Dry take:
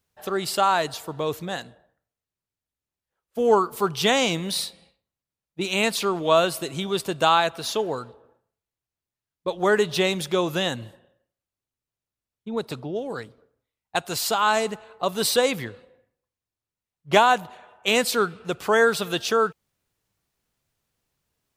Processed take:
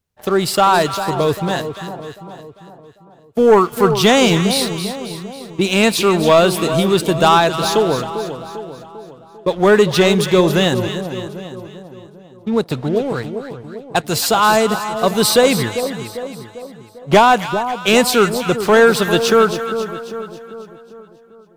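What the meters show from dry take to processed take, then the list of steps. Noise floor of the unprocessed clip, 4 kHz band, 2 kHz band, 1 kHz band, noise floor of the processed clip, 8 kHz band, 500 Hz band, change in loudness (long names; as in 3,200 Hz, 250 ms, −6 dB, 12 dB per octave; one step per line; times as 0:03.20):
below −85 dBFS, +7.0 dB, +7.0 dB, +8.0 dB, −44 dBFS, +8.0 dB, +9.5 dB, +8.5 dB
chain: low-shelf EQ 340 Hz +7.5 dB
leveller curve on the samples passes 2
echo with a time of its own for lows and highs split 1,100 Hz, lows 397 ms, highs 272 ms, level −9.5 dB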